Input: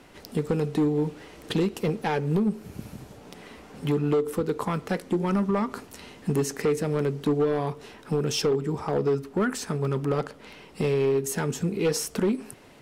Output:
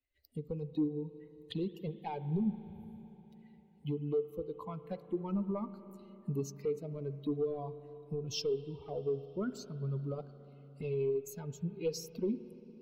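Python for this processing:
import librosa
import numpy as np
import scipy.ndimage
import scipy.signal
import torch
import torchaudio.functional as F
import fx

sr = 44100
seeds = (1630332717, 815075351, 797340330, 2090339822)

y = fx.bin_expand(x, sr, power=2.0)
y = fx.env_phaser(y, sr, low_hz=160.0, high_hz=1800.0, full_db=-33.5)
y = fx.rev_spring(y, sr, rt60_s=4.0, pass_ms=(36, 58), chirp_ms=70, drr_db=12.5)
y = y * 10.0 ** (-6.0 / 20.0)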